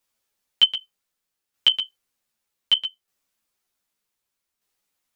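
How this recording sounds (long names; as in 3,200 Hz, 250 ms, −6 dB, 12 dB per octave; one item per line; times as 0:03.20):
tremolo saw down 0.65 Hz, depth 50%
a shimmering, thickened sound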